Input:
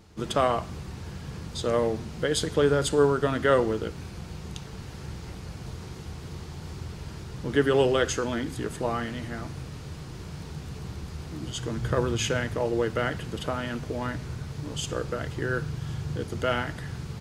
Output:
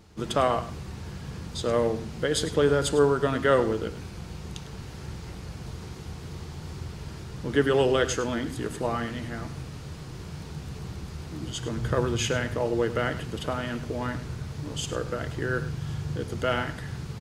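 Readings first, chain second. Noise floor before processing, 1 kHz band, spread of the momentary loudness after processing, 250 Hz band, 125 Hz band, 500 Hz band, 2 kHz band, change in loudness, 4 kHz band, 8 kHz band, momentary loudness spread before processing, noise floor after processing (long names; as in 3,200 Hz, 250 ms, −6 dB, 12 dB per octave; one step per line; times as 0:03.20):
−41 dBFS, 0.0 dB, 17 LU, +0.5 dB, 0.0 dB, 0.0 dB, 0.0 dB, 0.0 dB, 0.0 dB, 0.0 dB, 17 LU, −41 dBFS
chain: single-tap delay 102 ms −14 dB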